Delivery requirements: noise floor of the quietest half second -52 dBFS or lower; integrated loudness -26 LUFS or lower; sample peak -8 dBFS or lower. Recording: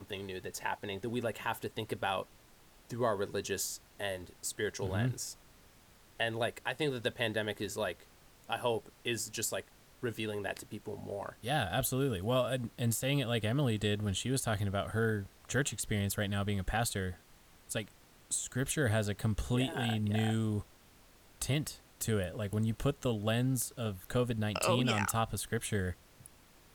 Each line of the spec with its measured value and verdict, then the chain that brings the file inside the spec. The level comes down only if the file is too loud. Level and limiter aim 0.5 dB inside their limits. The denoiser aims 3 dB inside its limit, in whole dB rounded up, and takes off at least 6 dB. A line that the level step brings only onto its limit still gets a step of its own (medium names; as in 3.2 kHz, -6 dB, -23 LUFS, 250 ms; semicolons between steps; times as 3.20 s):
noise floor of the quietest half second -61 dBFS: pass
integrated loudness -34.5 LUFS: pass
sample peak -16.5 dBFS: pass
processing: none needed